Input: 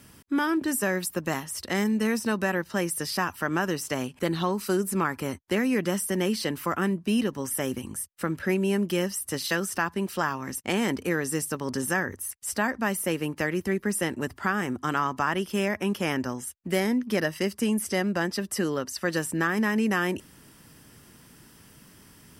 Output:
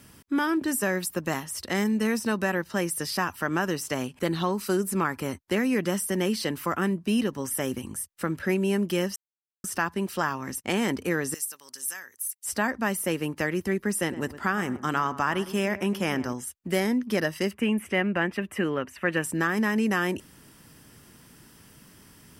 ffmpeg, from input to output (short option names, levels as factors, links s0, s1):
-filter_complex "[0:a]asettb=1/sr,asplit=3[s0][s1][s2];[s0]atrim=end=11.344[s3];[s1]atrim=start=11.34:end=12.45,asetpts=PTS-STARTPTS,afade=t=in:d=0.004:c=qsin,afade=t=out:st=1.106:d=0.004:c=qsin,aderivative[s4];[s2]atrim=start=12.446[s5];[s3][s4]acrossfade=d=0.004:c1=hsin:c2=qsin[s6];[s6][s5]acrossfade=d=0.004:c1=qsin:c2=hsin,asettb=1/sr,asplit=3[s7][s8][s9];[s7]atrim=end=13.994[s10];[s8]atrim=start=13.99:end=16.33,asetpts=PTS-STARTPTS,afade=t=in:d=0.004:c=qsin,afade=t=out:st=2.336:d=0.004:c=qsin,asplit=2[s11][s12];[s12]adelay=110,lowpass=f=1500:p=1,volume=0.211,asplit=2[s13][s14];[s14]adelay=110,lowpass=f=1500:p=1,volume=0.37,asplit=2[s15][s16];[s16]adelay=110,lowpass=f=1500:p=1,volume=0.37,asplit=2[s17][s18];[s18]adelay=110,lowpass=f=1500:p=1,volume=0.37[s19];[s11][s13][s15][s17][s19]amix=inputs=5:normalize=0,atrim=end_sample=103194[s20];[s9]atrim=start=16.326[s21];[s10][s20]acrossfade=d=0.004:c1=hsin:c2=qsin[s22];[s22][s21]acrossfade=d=0.004:c1=qsin:c2=hsin,asettb=1/sr,asplit=3[s23][s24][s25];[s23]atrim=end=17.514[s26];[s24]atrim=start=17.51:end=19.24,asetpts=PTS-STARTPTS,afade=t=in:d=0.004:c=qsin,afade=t=out:st=1.726:d=0.004:c=qsin,highshelf=f=3500:t=q:w=3:g=-11[s27];[s25]atrim=start=19.236[s28];[s26][s27]acrossfade=d=0.004:c1=hsin:c2=qsin[s29];[s29][s28]acrossfade=d=0.004:c1=qsin:c2=hsin,asplit=3[s30][s31][s32];[s30]atrim=end=9.16,asetpts=PTS-STARTPTS,afade=t=out:st=9.156:d=0.004:c=hsin[s33];[s31]atrim=start=9.16:end=9.64,asetpts=PTS-STARTPTS,volume=0[s34];[s32]atrim=start=9.64,asetpts=PTS-STARTPTS,afade=t=in:d=0.004:c=hsin[s35];[s33][s34][s35]concat=n=3:v=0:a=1"